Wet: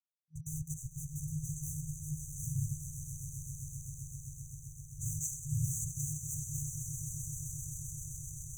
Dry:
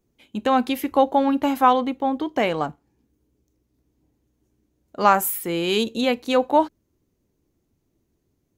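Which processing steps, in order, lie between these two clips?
noise vocoder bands 8; swelling echo 0.13 s, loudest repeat 8, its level -13 dB; crossover distortion -35.5 dBFS; FFT band-reject 160–5900 Hz; gain +5.5 dB

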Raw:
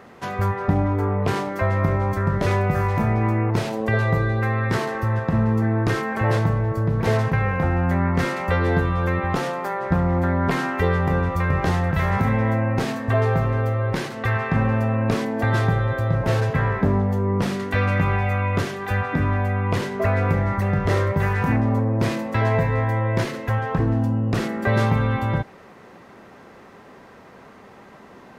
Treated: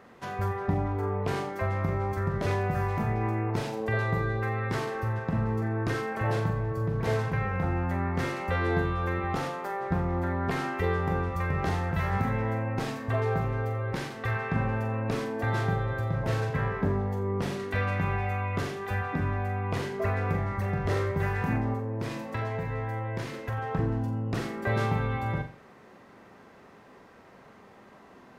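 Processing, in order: 21.73–23.58 compressor 2.5:1, threshold -22 dBFS, peak gain reduction 5 dB; flutter echo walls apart 7.4 m, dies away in 0.35 s; gain -8 dB

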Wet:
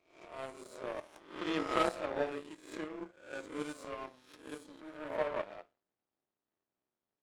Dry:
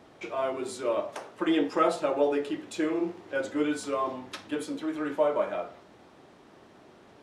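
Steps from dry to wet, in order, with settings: spectral swells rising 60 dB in 1.04 s; power-law curve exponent 2; gain -3 dB

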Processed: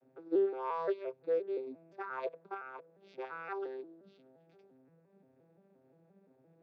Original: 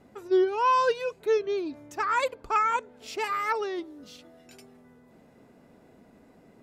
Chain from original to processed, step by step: arpeggiated vocoder major triad, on C3, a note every 0.174 s; 2.54–3.09 compressor 2:1, threshold -38 dBFS, peak gain reduction 8 dB; speaker cabinet 130–4000 Hz, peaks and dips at 130 Hz -8 dB, 220 Hz -9 dB, 310 Hz -4 dB, 1100 Hz -7 dB, 2000 Hz -6 dB, 3000 Hz -7 dB; gain -7 dB

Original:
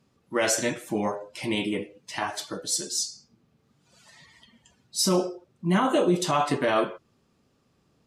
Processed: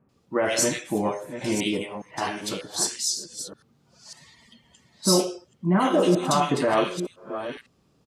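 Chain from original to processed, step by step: reverse delay 0.505 s, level -10 dB; bands offset in time lows, highs 90 ms, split 1800 Hz; gain +2 dB

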